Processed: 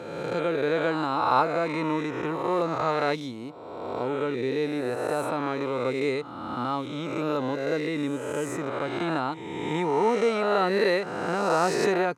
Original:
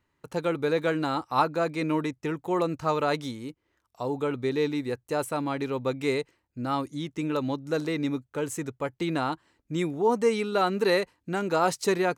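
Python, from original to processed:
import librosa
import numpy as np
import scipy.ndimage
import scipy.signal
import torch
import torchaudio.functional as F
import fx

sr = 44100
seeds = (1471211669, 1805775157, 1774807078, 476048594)

y = fx.spec_swells(x, sr, rise_s=1.71)
y = scipy.signal.sosfilt(scipy.signal.butter(2, 90.0, 'highpass', fs=sr, output='sos'), y)
y = fx.high_shelf(y, sr, hz=6900.0, db=-12.0)
y = y * 10.0 ** (-2.0 / 20.0)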